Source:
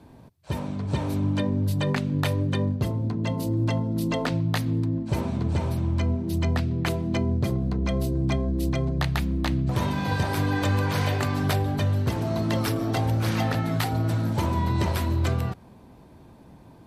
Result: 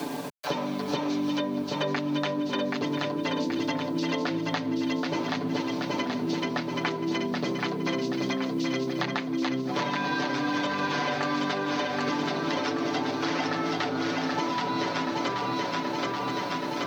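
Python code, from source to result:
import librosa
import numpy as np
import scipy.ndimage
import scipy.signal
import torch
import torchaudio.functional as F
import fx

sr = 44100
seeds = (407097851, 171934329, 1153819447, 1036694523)

p1 = scipy.signal.sosfilt(scipy.signal.butter(4, 210.0, 'highpass', fs=sr, output='sos'), x)
p2 = fx.low_shelf(p1, sr, hz=270.0, db=-4.5)
p3 = fx.level_steps(p2, sr, step_db=11)
p4 = p2 + (p3 * librosa.db_to_amplitude(-1.5))
p5 = scipy.signal.sosfilt(scipy.signal.butter(8, 6300.0, 'lowpass', fs=sr, output='sos'), p4)
p6 = p5 + 0.78 * np.pad(p5, (int(6.9 * sr / 1000.0), 0))[:len(p5)]
p7 = p6 + fx.echo_single(p6, sr, ms=1028, db=-13.0, dry=0)
p8 = fx.quant_dither(p7, sr, seeds[0], bits=10, dither='none')
p9 = fx.echo_feedback(p8, sr, ms=778, feedback_pct=54, wet_db=-3.5)
p10 = fx.band_squash(p9, sr, depth_pct=100)
y = p10 * librosa.db_to_amplitude(-6.0)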